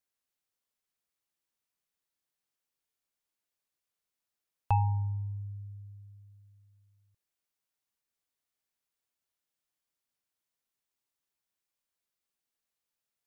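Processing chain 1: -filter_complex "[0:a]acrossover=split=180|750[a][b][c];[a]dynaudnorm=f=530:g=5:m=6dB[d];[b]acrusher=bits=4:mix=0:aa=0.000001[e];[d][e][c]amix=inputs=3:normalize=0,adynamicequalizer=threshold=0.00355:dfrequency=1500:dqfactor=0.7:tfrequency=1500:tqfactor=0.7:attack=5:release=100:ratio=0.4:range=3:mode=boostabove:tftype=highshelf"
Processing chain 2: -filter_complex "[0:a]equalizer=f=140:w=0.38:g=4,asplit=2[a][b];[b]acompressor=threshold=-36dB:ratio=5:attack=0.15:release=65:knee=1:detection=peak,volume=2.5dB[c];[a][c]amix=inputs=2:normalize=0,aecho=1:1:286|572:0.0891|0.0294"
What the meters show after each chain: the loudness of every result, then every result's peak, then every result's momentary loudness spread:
-28.5, -27.5 LUFS; -11.0, -12.0 dBFS; 20, 19 LU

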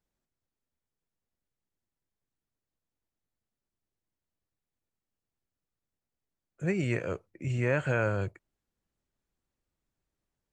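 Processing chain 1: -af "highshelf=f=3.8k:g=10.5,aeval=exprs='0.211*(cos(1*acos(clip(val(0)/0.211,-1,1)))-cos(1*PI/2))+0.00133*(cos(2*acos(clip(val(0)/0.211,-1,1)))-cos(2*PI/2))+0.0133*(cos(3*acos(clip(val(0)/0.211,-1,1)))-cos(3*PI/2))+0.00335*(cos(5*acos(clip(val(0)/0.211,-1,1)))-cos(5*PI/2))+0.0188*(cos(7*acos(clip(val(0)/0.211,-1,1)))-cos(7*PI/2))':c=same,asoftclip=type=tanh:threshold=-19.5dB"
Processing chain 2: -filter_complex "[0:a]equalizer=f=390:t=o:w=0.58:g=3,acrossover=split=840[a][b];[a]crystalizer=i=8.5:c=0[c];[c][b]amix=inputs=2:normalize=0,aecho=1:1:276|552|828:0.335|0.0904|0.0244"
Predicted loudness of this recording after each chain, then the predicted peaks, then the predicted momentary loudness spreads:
-35.0, -29.5 LUFS; -19.5, -14.0 dBFS; 12, 12 LU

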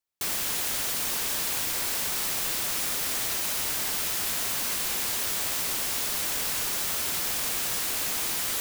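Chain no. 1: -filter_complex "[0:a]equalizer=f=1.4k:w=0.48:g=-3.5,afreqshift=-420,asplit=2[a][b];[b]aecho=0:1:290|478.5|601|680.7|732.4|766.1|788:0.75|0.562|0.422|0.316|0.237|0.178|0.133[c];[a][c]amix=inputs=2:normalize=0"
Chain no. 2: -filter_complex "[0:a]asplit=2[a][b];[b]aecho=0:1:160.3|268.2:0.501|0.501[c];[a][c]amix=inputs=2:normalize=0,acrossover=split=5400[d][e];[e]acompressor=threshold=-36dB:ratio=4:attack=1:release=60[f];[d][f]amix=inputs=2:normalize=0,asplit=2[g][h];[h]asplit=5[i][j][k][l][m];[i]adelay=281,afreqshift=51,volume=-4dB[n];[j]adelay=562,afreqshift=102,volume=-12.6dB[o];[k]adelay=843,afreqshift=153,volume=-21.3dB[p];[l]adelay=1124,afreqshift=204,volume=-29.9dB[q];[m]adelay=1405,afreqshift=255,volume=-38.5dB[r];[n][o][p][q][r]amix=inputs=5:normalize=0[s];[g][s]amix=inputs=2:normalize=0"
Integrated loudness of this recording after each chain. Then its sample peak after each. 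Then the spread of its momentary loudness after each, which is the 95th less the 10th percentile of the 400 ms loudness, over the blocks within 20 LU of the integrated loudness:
-23.0, -28.5 LUFS; -12.5, -17.5 dBFS; 0, 0 LU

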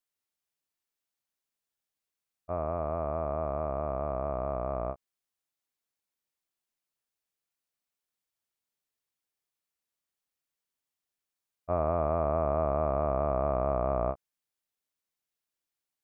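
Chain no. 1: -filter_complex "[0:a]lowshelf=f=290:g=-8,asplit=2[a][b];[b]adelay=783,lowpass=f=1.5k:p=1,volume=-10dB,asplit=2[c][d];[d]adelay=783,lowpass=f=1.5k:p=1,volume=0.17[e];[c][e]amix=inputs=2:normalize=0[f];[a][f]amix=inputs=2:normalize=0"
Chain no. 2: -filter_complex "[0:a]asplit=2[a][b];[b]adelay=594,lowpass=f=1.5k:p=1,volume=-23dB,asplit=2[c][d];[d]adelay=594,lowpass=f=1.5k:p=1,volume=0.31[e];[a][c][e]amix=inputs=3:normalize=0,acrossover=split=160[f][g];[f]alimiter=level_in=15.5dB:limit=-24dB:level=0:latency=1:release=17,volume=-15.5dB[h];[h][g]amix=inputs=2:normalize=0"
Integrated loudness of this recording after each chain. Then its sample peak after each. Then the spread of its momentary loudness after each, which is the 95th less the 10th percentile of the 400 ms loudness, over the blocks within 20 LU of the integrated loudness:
-33.0, -31.5 LUFS; -16.0, -16.5 dBFS; 15, 7 LU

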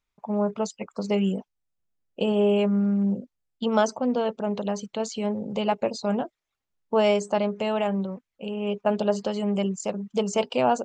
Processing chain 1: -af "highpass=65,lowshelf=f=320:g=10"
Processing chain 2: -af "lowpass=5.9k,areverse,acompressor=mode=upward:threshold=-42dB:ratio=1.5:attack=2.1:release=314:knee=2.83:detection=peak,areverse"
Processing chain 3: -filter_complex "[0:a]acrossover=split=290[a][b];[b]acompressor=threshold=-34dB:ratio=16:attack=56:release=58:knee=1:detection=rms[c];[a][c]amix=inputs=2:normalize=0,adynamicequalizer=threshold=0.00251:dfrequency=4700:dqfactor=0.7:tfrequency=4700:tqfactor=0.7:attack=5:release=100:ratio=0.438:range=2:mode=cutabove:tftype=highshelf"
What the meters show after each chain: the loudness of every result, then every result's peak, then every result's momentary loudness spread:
-21.5, -26.0, -29.5 LUFS; -7.0, -8.5, -14.5 dBFS; 10, 9, 9 LU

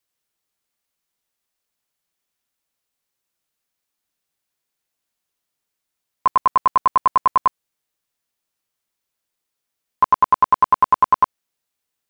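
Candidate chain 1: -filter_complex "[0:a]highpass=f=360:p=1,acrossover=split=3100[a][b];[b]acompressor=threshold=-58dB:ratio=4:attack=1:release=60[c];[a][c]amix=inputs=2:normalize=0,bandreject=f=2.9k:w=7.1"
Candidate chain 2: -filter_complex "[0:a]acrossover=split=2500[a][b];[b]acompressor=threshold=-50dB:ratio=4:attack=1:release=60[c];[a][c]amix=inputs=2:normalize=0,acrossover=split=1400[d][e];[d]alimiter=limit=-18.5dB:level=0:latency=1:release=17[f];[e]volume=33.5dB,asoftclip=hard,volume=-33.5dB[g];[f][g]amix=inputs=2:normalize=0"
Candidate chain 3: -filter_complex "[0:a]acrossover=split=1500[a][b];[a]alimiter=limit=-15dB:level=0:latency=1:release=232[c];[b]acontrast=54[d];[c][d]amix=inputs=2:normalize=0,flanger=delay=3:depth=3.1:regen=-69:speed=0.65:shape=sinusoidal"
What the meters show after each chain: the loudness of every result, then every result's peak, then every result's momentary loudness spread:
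-19.0, -28.0, -25.0 LUFS; -6.5, -17.0, -10.0 dBFS; 6, 6, 6 LU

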